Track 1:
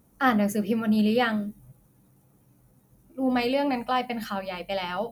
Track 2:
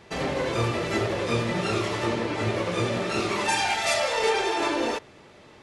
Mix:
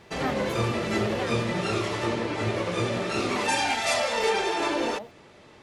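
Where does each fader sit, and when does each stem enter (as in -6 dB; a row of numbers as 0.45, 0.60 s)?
-11.5, -1.0 dB; 0.00, 0.00 s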